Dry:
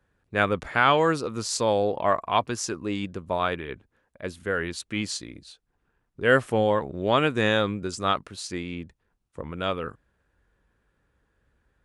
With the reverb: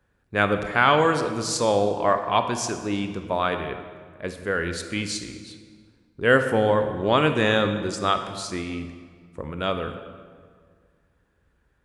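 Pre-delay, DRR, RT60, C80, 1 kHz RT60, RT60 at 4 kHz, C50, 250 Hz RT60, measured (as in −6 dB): 24 ms, 7.5 dB, 1.8 s, 9.5 dB, 1.7 s, 1.2 s, 8.5 dB, 2.1 s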